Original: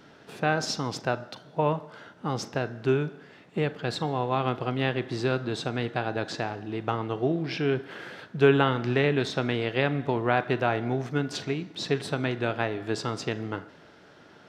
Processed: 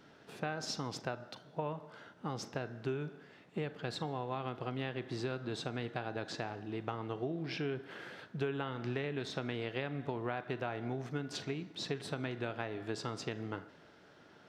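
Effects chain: compressor 6:1, threshold -26 dBFS, peak gain reduction 11.5 dB; gain -7 dB

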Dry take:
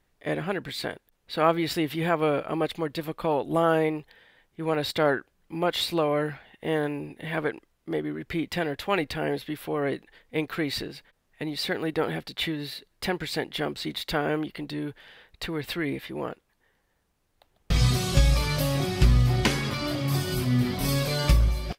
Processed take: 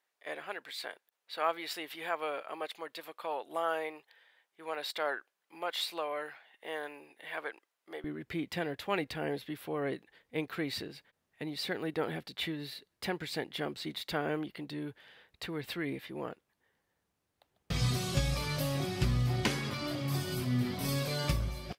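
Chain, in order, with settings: HPF 660 Hz 12 dB/oct, from 8.04 s 81 Hz; gain -7 dB

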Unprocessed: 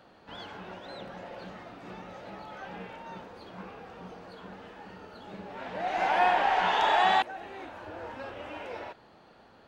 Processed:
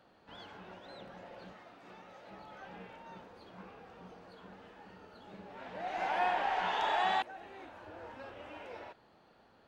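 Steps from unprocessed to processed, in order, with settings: 1.53–2.31 low shelf 260 Hz -9.5 dB; gain -7.5 dB

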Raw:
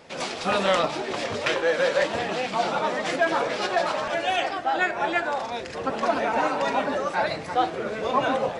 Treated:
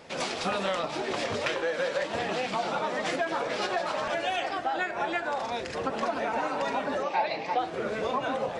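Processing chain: compressor, threshold -26 dBFS, peak gain reduction 9.5 dB; 7.03–7.59 speaker cabinet 240–5400 Hz, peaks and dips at 840 Hz +7 dB, 1400 Hz -10 dB, 2500 Hz +7 dB

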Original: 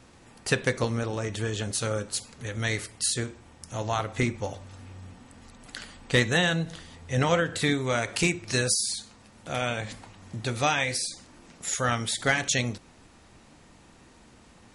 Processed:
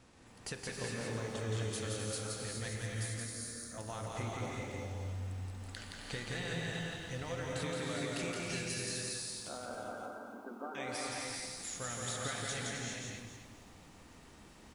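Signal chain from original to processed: compressor, threshold -33 dBFS, peak gain reduction 15 dB; 2.68–3.78 fixed phaser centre 580 Hz, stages 8; 9.48–10.75 brick-wall FIR band-pass 210–1600 Hz; on a send: echo 0.17 s -3 dB; on the sum: non-linear reverb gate 0.43 s rising, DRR -1 dB; lo-fi delay 0.266 s, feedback 35%, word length 9-bit, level -9 dB; gain -8 dB

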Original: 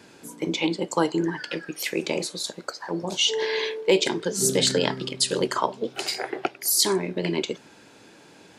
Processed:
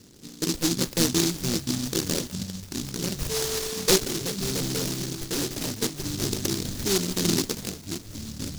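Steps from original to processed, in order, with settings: median filter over 41 samples; low shelf 99 Hz +12 dB; delay with a stepping band-pass 0.201 s, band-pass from 1300 Hz, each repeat 1.4 oct, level -3.5 dB; 2.29–2.99 flipped gate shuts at -26 dBFS, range -24 dB; echoes that change speed 0.143 s, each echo -5 st, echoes 3, each echo -6 dB; 3.99–5.75 hard clip -25 dBFS, distortion -12 dB; noise-modulated delay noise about 5100 Hz, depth 0.34 ms

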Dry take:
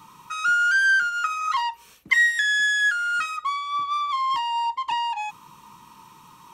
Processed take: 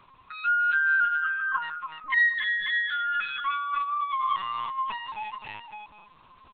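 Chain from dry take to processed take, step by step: 1.1–1.63 spectral contrast raised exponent 2.6; comb 2.7 ms, depth 68%; tapped delay 0.292/0.551/0.76 s -7.5/-6.5/-19 dB; LPC vocoder at 8 kHz pitch kept; gain -7 dB

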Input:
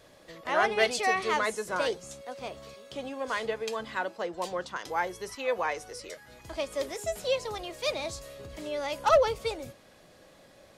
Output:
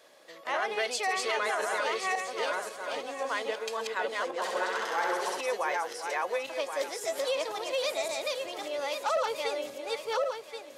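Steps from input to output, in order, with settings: regenerating reverse delay 0.539 s, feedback 40%, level -0.5 dB; HPF 430 Hz 12 dB/oct; limiter -20.5 dBFS, peak gain reduction 11 dB; 4.38–5.41 flutter echo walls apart 11.2 m, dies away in 1.1 s

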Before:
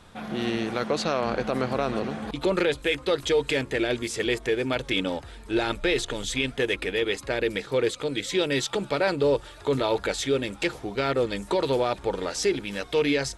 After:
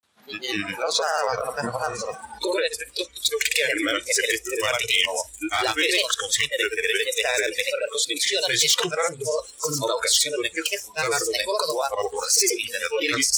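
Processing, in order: in parallel at 0 dB: negative-ratio compressor -27 dBFS, ratio -1; on the sum: tilt +3 dB/oct; on a send at -17 dB: reverb RT60 2.3 s, pre-delay 35 ms; on the sum: grains 0.1 s, grains 20/s, pitch spread up and down by 3 st; wavefolder -11 dBFS; HPF 56 Hz; thin delay 1.042 s, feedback 36%, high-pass 5600 Hz, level -5 dB; spectral noise reduction 22 dB

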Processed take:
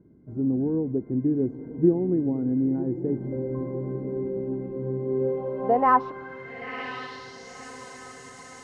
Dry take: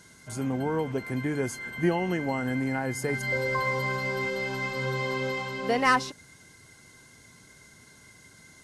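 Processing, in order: diffused feedback echo 1.02 s, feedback 56%, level -12.5 dB; low-pass sweep 330 Hz -> 7700 Hz, 5.03–7.68

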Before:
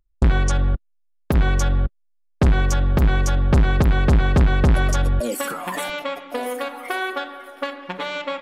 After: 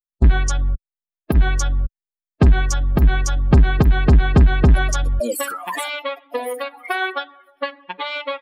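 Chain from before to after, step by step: per-bin expansion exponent 2; gain +6 dB

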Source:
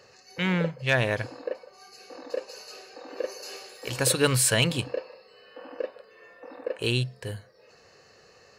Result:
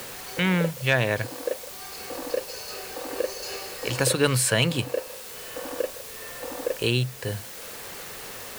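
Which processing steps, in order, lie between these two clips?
in parallel at -7.5 dB: requantised 6-bit, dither triangular; on the sum: three-band squash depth 40%

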